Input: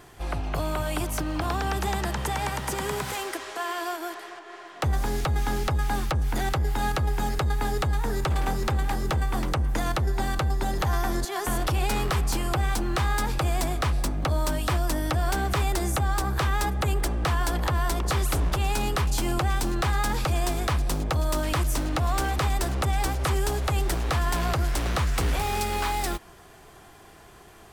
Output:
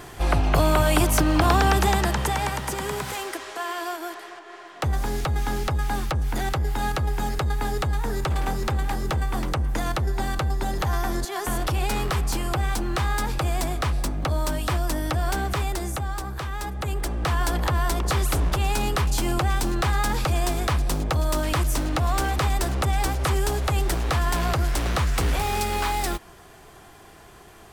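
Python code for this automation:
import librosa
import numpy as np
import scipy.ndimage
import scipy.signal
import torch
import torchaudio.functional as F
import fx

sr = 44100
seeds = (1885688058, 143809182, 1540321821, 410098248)

y = fx.gain(x, sr, db=fx.line((1.6, 9.0), (2.75, 0.5), (15.37, 0.5), (16.48, -6.5), (17.42, 2.0)))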